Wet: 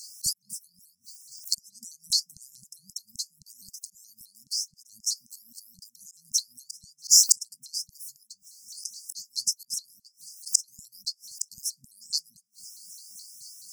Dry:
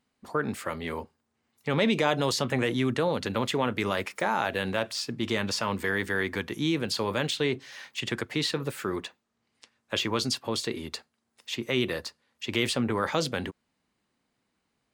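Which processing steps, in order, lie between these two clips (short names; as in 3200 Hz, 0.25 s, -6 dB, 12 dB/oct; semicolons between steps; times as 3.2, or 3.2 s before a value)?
high shelf 4600 Hz +6.5 dB; dispersion lows, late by 64 ms, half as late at 550 Hz; dynamic EQ 470 Hz, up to -4 dB, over -41 dBFS, Q 3.6; flipped gate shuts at -31 dBFS, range -36 dB; auto swell 0.136 s; speed mistake 44.1 kHz file played as 48 kHz; notches 50/100/150/200/250/300/350/400/450 Hz; LFO high-pass saw down 3.8 Hz 510–7600 Hz; brick-wall FIR band-stop 220–4700 Hz; maximiser +35.5 dB; shaped vibrato saw up 4.7 Hz, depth 250 cents; gain -1 dB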